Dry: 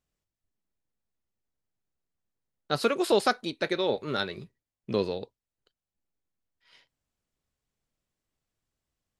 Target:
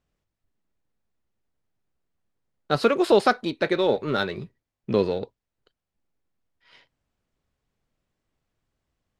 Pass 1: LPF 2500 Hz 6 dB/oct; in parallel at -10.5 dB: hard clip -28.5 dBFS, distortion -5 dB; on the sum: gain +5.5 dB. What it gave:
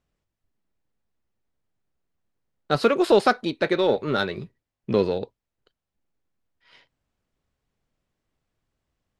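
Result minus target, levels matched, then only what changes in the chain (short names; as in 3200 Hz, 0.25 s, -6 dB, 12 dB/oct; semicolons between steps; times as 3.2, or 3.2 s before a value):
hard clip: distortion -4 dB
change: hard clip -38.5 dBFS, distortion -1 dB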